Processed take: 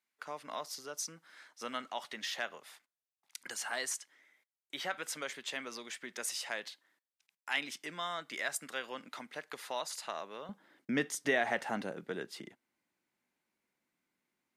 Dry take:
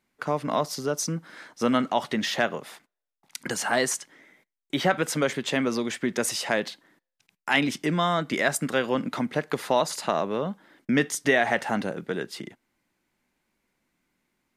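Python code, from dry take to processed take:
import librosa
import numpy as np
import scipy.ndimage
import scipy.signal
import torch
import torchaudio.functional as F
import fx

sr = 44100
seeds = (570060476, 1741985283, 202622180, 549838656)

y = fx.highpass(x, sr, hz=fx.steps((0.0, 1500.0), (10.49, 200.0)), slope=6)
y = F.gain(torch.from_numpy(y), -8.5).numpy()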